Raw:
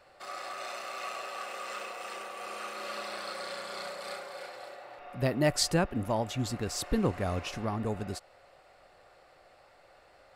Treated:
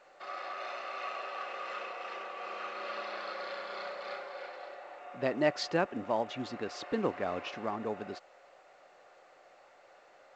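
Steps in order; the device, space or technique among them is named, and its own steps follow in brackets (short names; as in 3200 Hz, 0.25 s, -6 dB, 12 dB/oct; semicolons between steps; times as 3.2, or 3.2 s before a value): telephone (BPF 290–3200 Hz; A-law 128 kbps 16000 Hz)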